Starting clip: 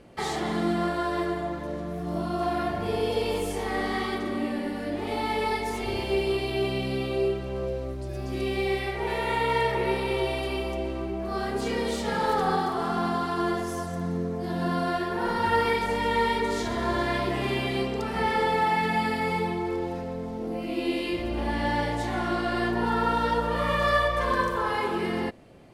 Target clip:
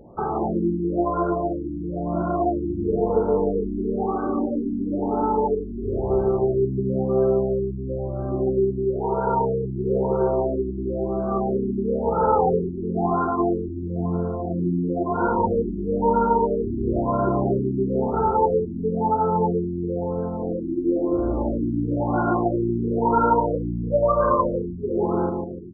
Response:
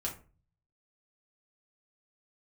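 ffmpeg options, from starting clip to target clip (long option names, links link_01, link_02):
-filter_complex "[0:a]asplit=2[link_01][link_02];[link_02]adelay=147,lowpass=frequency=960:poles=1,volume=-3.5dB,asplit=2[link_03][link_04];[link_04]adelay=147,lowpass=frequency=960:poles=1,volume=0.52,asplit=2[link_05][link_06];[link_06]adelay=147,lowpass=frequency=960:poles=1,volume=0.52,asplit=2[link_07][link_08];[link_08]adelay=147,lowpass=frequency=960:poles=1,volume=0.52,asplit=2[link_09][link_10];[link_10]adelay=147,lowpass=frequency=960:poles=1,volume=0.52,asplit=2[link_11][link_12];[link_12]adelay=147,lowpass=frequency=960:poles=1,volume=0.52,asplit=2[link_13][link_14];[link_14]adelay=147,lowpass=frequency=960:poles=1,volume=0.52[link_15];[link_01][link_03][link_05][link_07][link_09][link_11][link_13][link_15]amix=inputs=8:normalize=0,afftfilt=real='re*lt(b*sr/1024,380*pow(1600/380,0.5+0.5*sin(2*PI*1*pts/sr)))':imag='im*lt(b*sr/1024,380*pow(1600/380,0.5+0.5*sin(2*PI*1*pts/sr)))':win_size=1024:overlap=0.75,volume=5.5dB"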